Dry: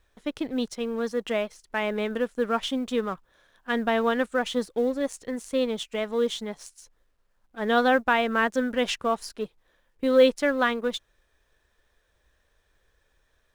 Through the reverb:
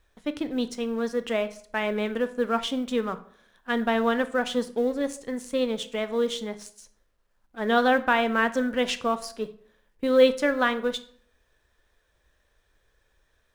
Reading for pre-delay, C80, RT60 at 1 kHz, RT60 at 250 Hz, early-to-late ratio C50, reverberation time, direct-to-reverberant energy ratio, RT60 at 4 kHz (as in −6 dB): 14 ms, 19.5 dB, 0.50 s, 0.65 s, 15.5 dB, 0.55 s, 11.5 dB, 0.40 s